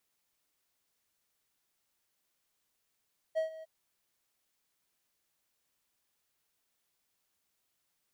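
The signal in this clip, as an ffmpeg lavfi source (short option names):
-f lavfi -i "aevalsrc='0.0596*(1-4*abs(mod(639*t+0.25,1)-0.5))':d=0.305:s=44100,afade=t=in:d=0.027,afade=t=out:st=0.027:d=0.118:silence=0.141,afade=t=out:st=0.28:d=0.025"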